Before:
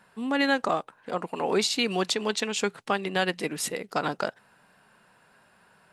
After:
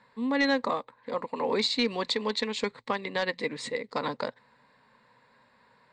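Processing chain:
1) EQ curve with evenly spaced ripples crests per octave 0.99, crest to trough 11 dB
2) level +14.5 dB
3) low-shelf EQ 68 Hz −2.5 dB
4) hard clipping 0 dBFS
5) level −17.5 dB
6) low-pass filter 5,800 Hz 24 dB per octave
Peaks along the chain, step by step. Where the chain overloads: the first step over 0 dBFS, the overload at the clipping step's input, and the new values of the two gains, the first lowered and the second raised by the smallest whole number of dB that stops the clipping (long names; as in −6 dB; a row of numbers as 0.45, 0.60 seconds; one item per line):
−9.5, +5.0, +5.0, 0.0, −17.5, −16.5 dBFS
step 2, 5.0 dB
step 2 +9.5 dB, step 5 −12.5 dB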